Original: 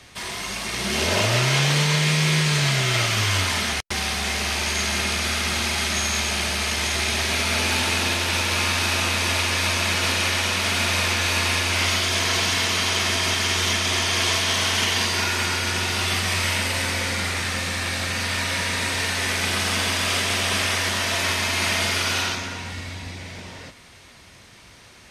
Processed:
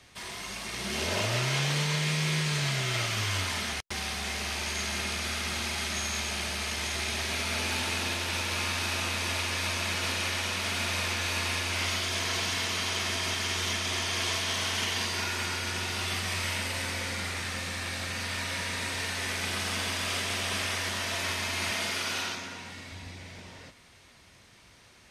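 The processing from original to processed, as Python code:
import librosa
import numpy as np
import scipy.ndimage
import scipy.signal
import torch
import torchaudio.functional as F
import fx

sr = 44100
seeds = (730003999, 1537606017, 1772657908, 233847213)

y = fx.highpass(x, sr, hz=130.0, slope=12, at=(21.71, 22.92))
y = y * librosa.db_to_amplitude(-8.5)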